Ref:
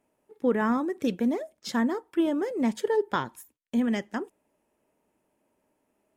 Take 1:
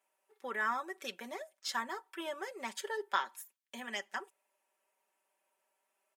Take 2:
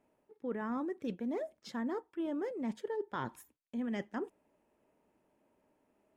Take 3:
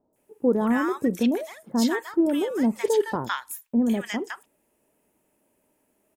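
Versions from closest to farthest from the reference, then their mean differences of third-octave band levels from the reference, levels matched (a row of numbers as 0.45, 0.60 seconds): 2, 3, 1; 3.0, 6.5, 8.5 decibels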